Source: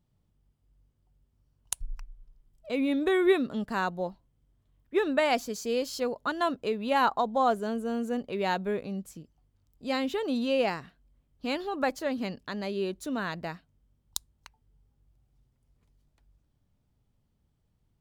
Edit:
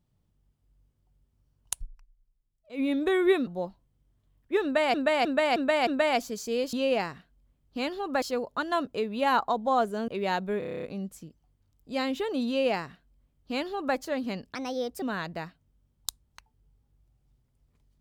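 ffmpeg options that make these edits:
-filter_complex "[0:a]asplit=21[a][b][c][d][e][f][g][h][i][j][k][l][m][n][o][p][q][r][s][t][u];[a]atrim=end=2.16,asetpts=PTS-STARTPTS,afade=t=out:st=1.83:d=0.33:c=exp:silence=0.16788[v];[b]atrim=start=2.16:end=2.47,asetpts=PTS-STARTPTS,volume=-15.5dB[w];[c]atrim=start=2.47:end=3.472,asetpts=PTS-STARTPTS,afade=t=in:d=0.33:c=exp:silence=0.16788[x];[d]atrim=start=3.888:end=5.362[y];[e]atrim=start=5.048:end=5.362[z];[f]atrim=start=5.048:end=5.362[aa];[g]atrim=start=5.048:end=5.362[ab];[h]atrim=start=5.048:end=5.912[ac];[i]atrim=start=10.408:end=11.902[ad];[j]atrim=start=5.908:end=7.772[ae];[k]atrim=start=8.258:end=8.802[af];[l]atrim=start=8.768:end=8.802[ag];[m]atrim=start=8.768:end=8.802[ah];[n]atrim=start=8.768:end=8.802[ai];[o]atrim=start=8.768:end=8.802[aj];[p]atrim=start=8.768:end=8.802[ak];[q]atrim=start=8.768:end=8.802[al];[r]atrim=start=8.768:end=8.802[am];[s]atrim=start=8.768:end=12.494[an];[t]atrim=start=12.49:end=13.1,asetpts=PTS-STARTPTS,asetrate=56889,aresample=44100,atrim=end_sample=20853,asetpts=PTS-STARTPTS[ao];[u]atrim=start=13.096[ap];[v][w][x]concat=n=3:v=0:a=1[aq];[aq][y]acrossfade=d=0.004:c1=hsin:c2=hsin[ar];[ar][z]acrossfade=d=0.004:c1=hsin:c2=hsin[as];[as][aa]acrossfade=d=0.004:c1=hsin:c2=hsin[at];[at][ab]acrossfade=d=0.004:c1=hsin:c2=hsin[au];[au][ac]acrossfade=d=0.004:c1=hsin:c2=hsin[av];[av][ad]acrossfade=d=0.004:c1=hsin:c2=hsin[aw];[aw][ae]acrossfade=d=0.004:c1=hsin:c2=hsin[ax];[ax][af]acrossfade=d=0.004:c1=hsin:c2=hsin[ay];[ay][ag]acrossfade=d=0.004:c1=hsin:c2=hsin[az];[az][ah]acrossfade=d=0.004:c1=hsin:c2=hsin[ba];[ba][ai]acrossfade=d=0.004:c1=hsin:c2=hsin[bb];[bb][aj]acrossfade=d=0.004:c1=hsin:c2=hsin[bc];[bc][ak]acrossfade=d=0.004:c1=hsin:c2=hsin[bd];[bd][al]acrossfade=d=0.004:c1=hsin:c2=hsin[be];[be][am]acrossfade=d=0.004:c1=hsin:c2=hsin[bf];[bf][an]acrossfade=d=0.004:c1=hsin:c2=hsin[bg];[bg][ao]acrossfade=d=0.004:c1=hsin:c2=hsin[bh];[bh][ap]acrossfade=d=0.004:c1=hsin:c2=hsin"

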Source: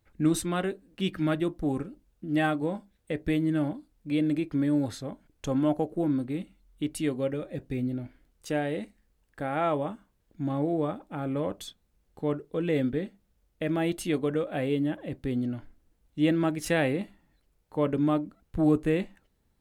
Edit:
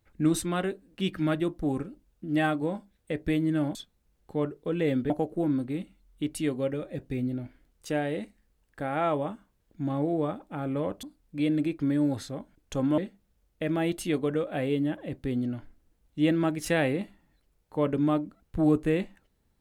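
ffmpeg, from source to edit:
-filter_complex "[0:a]asplit=5[a][b][c][d][e];[a]atrim=end=3.752[f];[b]atrim=start=11.628:end=12.982[g];[c]atrim=start=5.698:end=11.632[h];[d]atrim=start=3.748:end=5.702[i];[e]atrim=start=12.978[j];[f][g]acrossfade=d=0.004:c1=hsin:c2=hsin[k];[k][h]acrossfade=d=0.004:c1=hsin:c2=hsin[l];[l][i]acrossfade=d=0.004:c1=hsin:c2=hsin[m];[m][j]acrossfade=d=0.004:c1=hsin:c2=hsin"

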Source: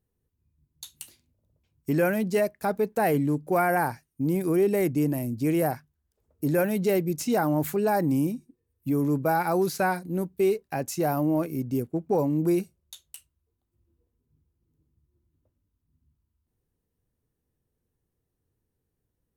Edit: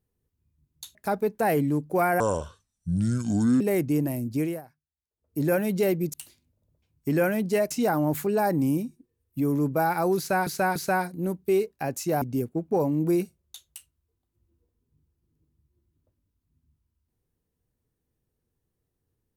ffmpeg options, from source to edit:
-filter_complex "[0:a]asplit=11[a][b][c][d][e][f][g][h][i][j][k];[a]atrim=end=0.952[l];[b]atrim=start=2.518:end=3.774[m];[c]atrim=start=3.77:end=4.67,asetpts=PTS-STARTPTS,asetrate=28224,aresample=44100[n];[d]atrim=start=4.666:end=5.68,asetpts=PTS-STARTPTS,afade=t=out:st=0.764:d=0.25:silence=0.1[o];[e]atrim=start=5.68:end=6.24,asetpts=PTS-STARTPTS,volume=-20dB[p];[f]atrim=start=6.24:end=7.202,asetpts=PTS-STARTPTS,afade=t=in:d=0.25:silence=0.1[q];[g]atrim=start=0.948:end=2.522[r];[h]atrim=start=7.198:end=9.962[s];[i]atrim=start=9.668:end=9.962[t];[j]atrim=start=9.668:end=11.132[u];[k]atrim=start=11.598[v];[l][m]acrossfade=d=0.004:c1=hsin:c2=hsin[w];[w][n]acrossfade=d=0.004:c1=hsin:c2=hsin[x];[o][p][q]concat=n=3:v=0:a=1[y];[x][y]acrossfade=d=0.004:c1=hsin:c2=hsin[z];[z][r]acrossfade=d=0.004:c1=hsin:c2=hsin[aa];[aa][s]acrossfade=d=0.004:c1=hsin:c2=hsin[ab];[ab][t]acrossfade=d=0.004:c1=hsin:c2=hsin[ac];[ac][u]acrossfade=d=0.004:c1=hsin:c2=hsin[ad];[ad][v]acrossfade=d=0.004:c1=hsin:c2=hsin"

